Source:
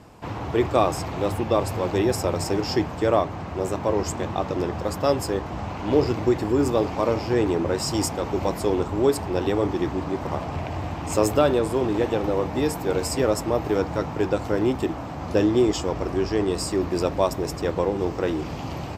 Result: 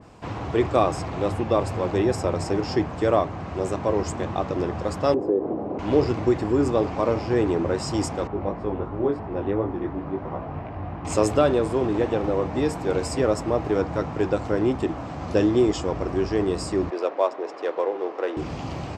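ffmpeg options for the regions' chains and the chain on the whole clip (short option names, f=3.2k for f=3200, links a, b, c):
-filter_complex "[0:a]asettb=1/sr,asplit=3[a][b][c];[a]atrim=end=5.144[d];[b]atrim=start=5.14:end=5.79,asetpts=PTS-STARTPTS,afade=t=in:d=0.004:c=qsin,afade=t=out:st=0.646:d=0.004:c=qsin,acompressor=threshold=-28dB:ratio=6:attack=3.2:release=140:knee=1:detection=peak,bandpass=f=350:t=q:w=1,equalizer=f=410:t=o:w=1.9:g=14.5[e];[c]atrim=start=5.786[f];[d][e]acrossfade=d=0.004:c1=hsin:c2=qsin[g];[g][f]acrossfade=d=0.004:c1=qsin:c2=hsin,asettb=1/sr,asplit=3[h][i][j];[h]atrim=end=8.274[k];[i]atrim=start=8.27:end=11.05,asetpts=PTS-STARTPTS,afade=t=in:d=0.004:c=qsin,afade=t=out:st=2.776:d=0.004:c=qsin,lowpass=1.7k,flanger=delay=17.5:depth=3.3:speed=2.9[l];[j]atrim=start=11.046[m];[k][l]acrossfade=d=0.004:c1=hsin:c2=qsin[n];[n][m]acrossfade=d=0.004:c1=qsin:c2=hsin,asettb=1/sr,asplit=3[o][p][q];[o]atrim=end=16.904[r];[p]atrim=start=16.9:end=18.37,asetpts=PTS-STARTPTS,afade=t=in:d=0.004:c=qsin,afade=t=out:st=1.466:d=0.004:c=qsin,aemphasis=mode=reproduction:type=50fm,adynamicsmooth=sensitivity=6:basefreq=3.5k,highpass=f=390:w=0.5412,highpass=f=390:w=1.3066[s];[q]atrim=start=18.366[t];[r][s]acrossfade=d=0.004:c1=hsin:c2=qsin[u];[u][t]acrossfade=d=0.004:c1=qsin:c2=hsin,lowpass=f=9.5k:w=0.5412,lowpass=f=9.5k:w=1.3066,bandreject=f=890:w=22,adynamicequalizer=threshold=0.01:dfrequency=2500:dqfactor=0.7:tfrequency=2500:tqfactor=0.7:attack=5:release=100:ratio=0.375:range=3:mode=cutabove:tftype=highshelf"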